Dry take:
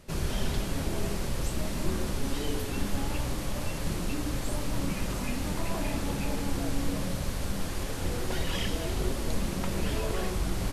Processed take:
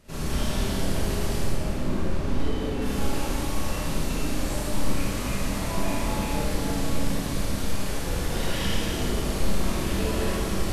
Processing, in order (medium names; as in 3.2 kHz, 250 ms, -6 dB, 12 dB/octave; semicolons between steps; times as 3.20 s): 1.40–2.82 s: low-pass 1.7 kHz 6 dB/octave; Schroeder reverb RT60 2 s, combs from 28 ms, DRR -8 dB; trim -4 dB